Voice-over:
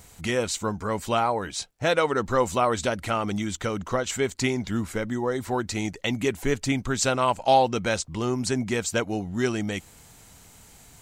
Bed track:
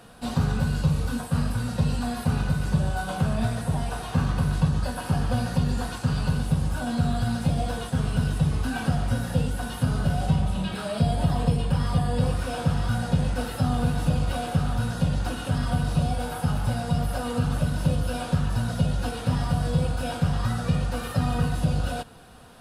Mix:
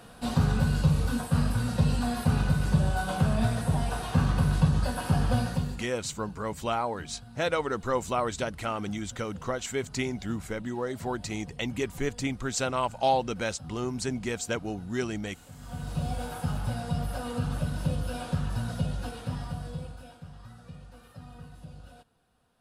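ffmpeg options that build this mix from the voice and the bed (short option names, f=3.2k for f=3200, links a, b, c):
-filter_complex "[0:a]adelay=5550,volume=-5.5dB[a];[1:a]volume=17dB,afade=t=out:st=5.35:d=0.51:silence=0.0749894,afade=t=in:st=15.58:d=0.55:silence=0.133352,afade=t=out:st=18.72:d=1.45:silence=0.149624[b];[a][b]amix=inputs=2:normalize=0"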